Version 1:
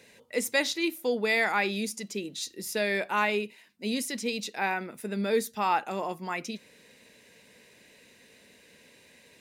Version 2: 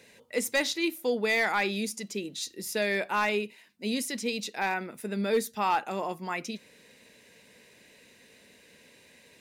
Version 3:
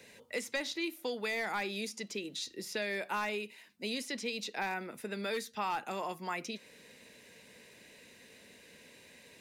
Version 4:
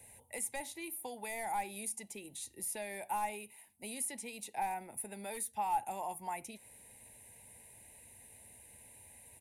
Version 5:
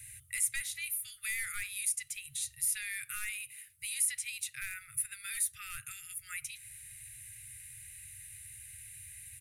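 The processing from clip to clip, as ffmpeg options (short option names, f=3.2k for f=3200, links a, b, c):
-af "asoftclip=type=hard:threshold=-18.5dB"
-filter_complex "[0:a]acrossover=split=300|990|5700[a][b][c][d];[a]acompressor=threshold=-48dB:ratio=4[e];[b]acompressor=threshold=-40dB:ratio=4[f];[c]acompressor=threshold=-37dB:ratio=4[g];[d]acompressor=threshold=-53dB:ratio=4[h];[e][f][g][h]amix=inputs=4:normalize=0"
-af "firequalizer=gain_entry='entry(100,0);entry(160,-16);entry(470,-20);entry(840,-3);entry(1200,-27);entry(2100,-16);entry(3300,-21);entry(5000,-24);entry(10000,7);entry(15000,-10)':delay=0.05:min_phase=1,volume=9dB"
-af "afftfilt=real='re*(1-between(b*sr/4096,150,1200))':imag='im*(1-between(b*sr/4096,150,1200))':win_size=4096:overlap=0.75,volume=8dB"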